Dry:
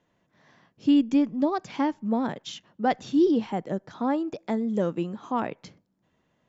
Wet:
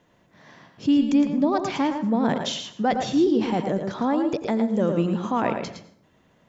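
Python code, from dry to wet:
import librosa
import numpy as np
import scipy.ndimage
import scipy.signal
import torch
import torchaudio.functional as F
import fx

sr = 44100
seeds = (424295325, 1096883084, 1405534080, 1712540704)

p1 = fx.over_compress(x, sr, threshold_db=-32.0, ratio=-1.0)
p2 = x + F.gain(torch.from_numpy(p1), -1.5).numpy()
p3 = p2 + 10.0 ** (-7.0 / 20.0) * np.pad(p2, (int(112 * sr / 1000.0), 0))[:len(p2)]
y = fx.rev_plate(p3, sr, seeds[0], rt60_s=0.62, hf_ratio=0.65, predelay_ms=75, drr_db=12.0)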